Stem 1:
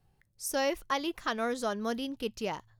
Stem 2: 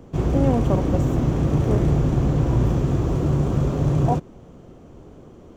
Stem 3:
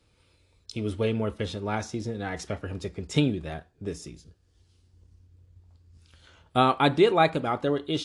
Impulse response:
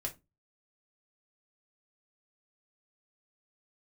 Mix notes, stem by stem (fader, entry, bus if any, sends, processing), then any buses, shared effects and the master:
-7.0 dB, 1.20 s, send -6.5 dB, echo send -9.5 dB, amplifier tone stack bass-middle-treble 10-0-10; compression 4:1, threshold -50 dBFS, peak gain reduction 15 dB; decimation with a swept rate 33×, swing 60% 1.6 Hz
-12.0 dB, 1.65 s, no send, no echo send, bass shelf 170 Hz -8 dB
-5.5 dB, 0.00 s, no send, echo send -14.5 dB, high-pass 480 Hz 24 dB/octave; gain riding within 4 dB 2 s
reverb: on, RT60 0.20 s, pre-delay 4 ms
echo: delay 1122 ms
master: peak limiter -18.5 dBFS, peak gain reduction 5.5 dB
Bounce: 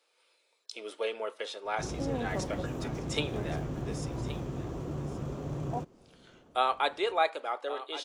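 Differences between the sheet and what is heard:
stem 1: entry 1.20 s -> 1.90 s; master: missing peak limiter -18.5 dBFS, peak gain reduction 5.5 dB

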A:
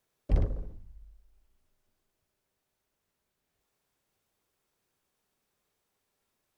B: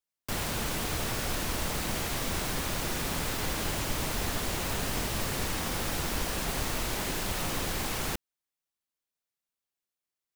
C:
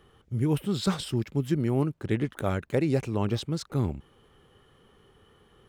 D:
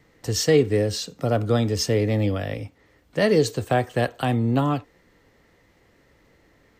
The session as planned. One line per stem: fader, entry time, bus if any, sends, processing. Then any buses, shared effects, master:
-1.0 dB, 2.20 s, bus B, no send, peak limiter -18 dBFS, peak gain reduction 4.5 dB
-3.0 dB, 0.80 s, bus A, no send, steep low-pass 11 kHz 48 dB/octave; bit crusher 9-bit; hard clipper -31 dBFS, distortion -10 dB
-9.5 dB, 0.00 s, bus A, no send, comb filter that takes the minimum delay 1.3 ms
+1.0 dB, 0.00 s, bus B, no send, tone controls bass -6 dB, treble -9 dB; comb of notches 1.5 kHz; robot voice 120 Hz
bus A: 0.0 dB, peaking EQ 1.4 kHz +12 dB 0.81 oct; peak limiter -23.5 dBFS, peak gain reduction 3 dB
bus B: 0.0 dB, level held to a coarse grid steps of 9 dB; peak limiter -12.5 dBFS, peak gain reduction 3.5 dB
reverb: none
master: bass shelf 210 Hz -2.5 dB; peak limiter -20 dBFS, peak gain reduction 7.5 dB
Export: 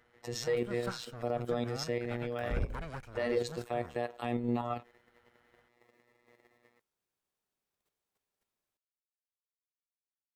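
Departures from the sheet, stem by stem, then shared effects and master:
stem B: muted; stem C -9.5 dB -> -15.5 dB

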